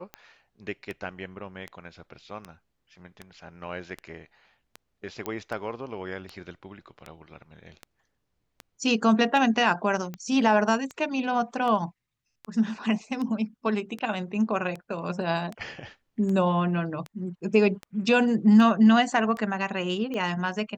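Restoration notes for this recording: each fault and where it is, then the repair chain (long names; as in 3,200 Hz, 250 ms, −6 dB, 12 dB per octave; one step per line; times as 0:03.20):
scratch tick 78 rpm −22 dBFS
0:05.26: click −16 dBFS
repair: click removal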